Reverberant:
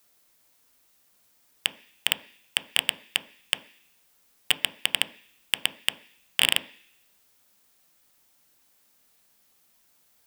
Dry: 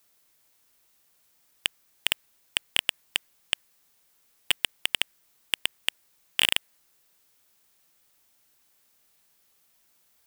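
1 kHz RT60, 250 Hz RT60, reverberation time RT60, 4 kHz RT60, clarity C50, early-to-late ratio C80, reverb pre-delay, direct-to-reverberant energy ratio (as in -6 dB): 0.50 s, 0.50 s, 0.50 s, 0.90 s, 16.5 dB, 19.0 dB, 3 ms, 9.0 dB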